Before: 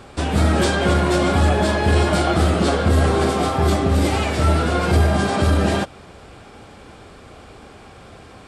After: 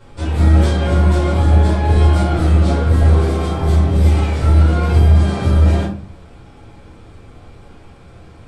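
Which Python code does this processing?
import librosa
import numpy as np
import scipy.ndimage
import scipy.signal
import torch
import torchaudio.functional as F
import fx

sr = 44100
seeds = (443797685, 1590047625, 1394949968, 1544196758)

y = fx.low_shelf(x, sr, hz=180.0, db=8.0)
y = fx.room_shoebox(y, sr, seeds[0], volume_m3=290.0, walls='furnished', distance_m=4.8)
y = y * librosa.db_to_amplitude(-13.0)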